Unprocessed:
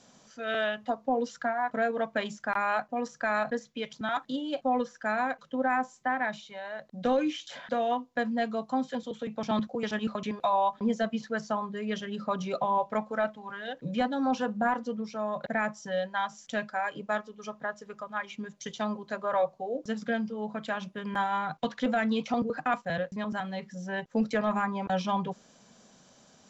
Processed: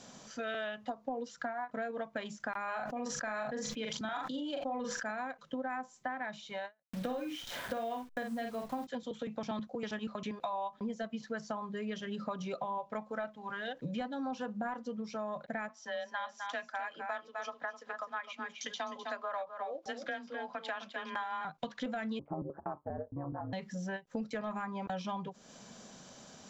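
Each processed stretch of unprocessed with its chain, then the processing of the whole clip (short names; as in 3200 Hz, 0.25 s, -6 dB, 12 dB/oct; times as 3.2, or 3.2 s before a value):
2.64–5.11 doubler 41 ms -6 dB + sustainer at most 33 dB/s
6.83–8.87 level-crossing sampler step -44.5 dBFS + doubler 48 ms -5 dB
15.69–21.45 three-band isolator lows -15 dB, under 530 Hz, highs -22 dB, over 6400 Hz + frequency shift +22 Hz + echo 0.256 s -9.5 dB
22.19–23.53 LPF 1000 Hz 24 dB/oct + ring modulator 74 Hz
whole clip: compressor 5:1, threshold -42 dBFS; ending taper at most 380 dB/s; gain +5 dB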